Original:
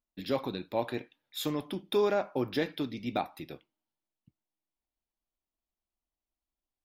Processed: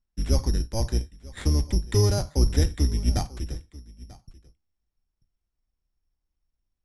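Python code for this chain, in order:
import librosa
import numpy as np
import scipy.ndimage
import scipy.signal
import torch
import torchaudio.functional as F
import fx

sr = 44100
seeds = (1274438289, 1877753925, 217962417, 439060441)

y = fx.octave_divider(x, sr, octaves=2, level_db=4.0)
y = fx.high_shelf(y, sr, hz=6500.0, db=9.5, at=(1.52, 3.53))
y = y + 10.0 ** (-21.0 / 20.0) * np.pad(y, (int(940 * sr / 1000.0), 0))[:len(y)]
y = (np.kron(y[::8], np.eye(8)[0]) * 8)[:len(y)]
y = scipy.signal.sosfilt(scipy.signal.butter(8, 11000.0, 'lowpass', fs=sr, output='sos'), y)
y = fx.riaa(y, sr, side='playback')
y = fx.notch(y, sr, hz=640.0, q=21.0)
y = y * librosa.db_to_amplitude(-4.0)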